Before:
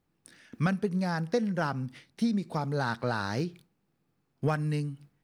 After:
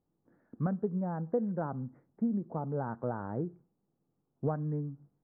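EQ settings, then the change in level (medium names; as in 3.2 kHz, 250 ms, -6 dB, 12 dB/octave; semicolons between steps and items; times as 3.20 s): Gaussian low-pass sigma 8.8 samples; bass shelf 210 Hz -6.5 dB; 0.0 dB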